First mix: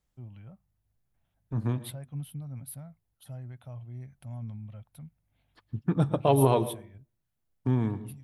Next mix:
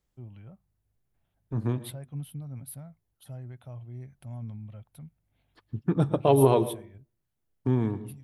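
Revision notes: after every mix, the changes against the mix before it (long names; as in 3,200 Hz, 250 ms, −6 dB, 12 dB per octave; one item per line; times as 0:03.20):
master: add parametric band 380 Hz +5 dB 0.69 octaves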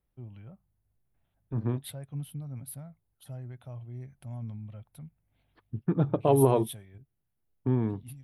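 second voice: add high-frequency loss of the air 300 metres
reverb: off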